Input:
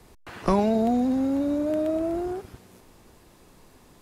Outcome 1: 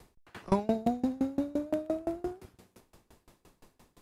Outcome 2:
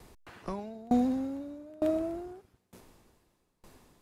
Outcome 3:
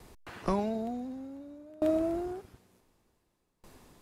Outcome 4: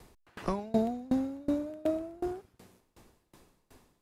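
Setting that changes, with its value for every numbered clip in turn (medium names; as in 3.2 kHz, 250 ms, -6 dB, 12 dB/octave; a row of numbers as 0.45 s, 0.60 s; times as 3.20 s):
sawtooth tremolo in dB, rate: 5.8 Hz, 1.1 Hz, 0.55 Hz, 2.7 Hz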